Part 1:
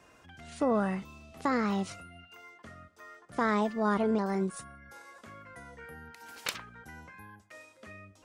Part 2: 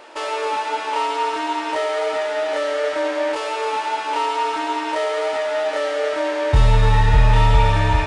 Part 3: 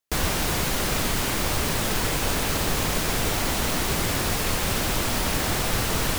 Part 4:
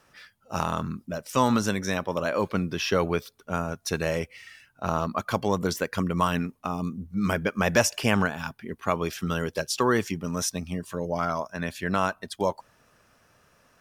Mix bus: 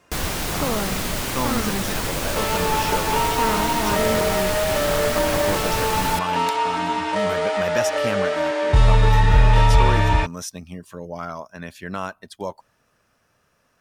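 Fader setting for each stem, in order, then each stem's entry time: +1.0 dB, -0.5 dB, -1.0 dB, -4.0 dB; 0.00 s, 2.20 s, 0.00 s, 0.00 s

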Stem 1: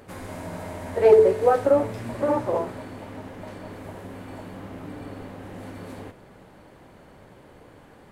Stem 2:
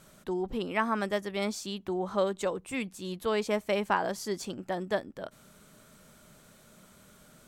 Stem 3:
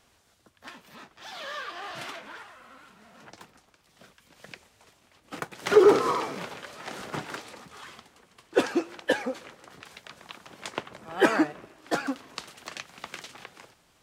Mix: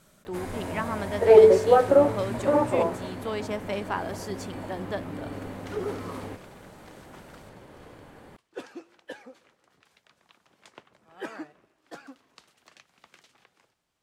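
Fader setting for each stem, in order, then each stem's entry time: +1.0 dB, -3.0 dB, -16.0 dB; 0.25 s, 0.00 s, 0.00 s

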